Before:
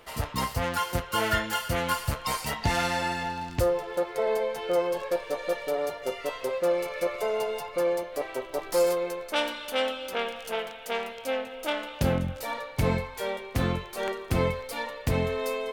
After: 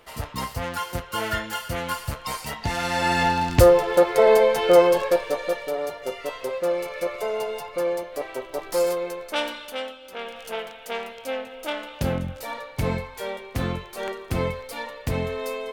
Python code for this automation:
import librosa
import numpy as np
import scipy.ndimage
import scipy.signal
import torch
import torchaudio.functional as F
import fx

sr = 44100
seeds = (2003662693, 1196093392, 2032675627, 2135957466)

y = fx.gain(x, sr, db=fx.line((2.79, -1.0), (3.21, 11.0), (4.83, 11.0), (5.7, 1.0), (9.55, 1.0), (10.01, -9.0), (10.4, 0.0)))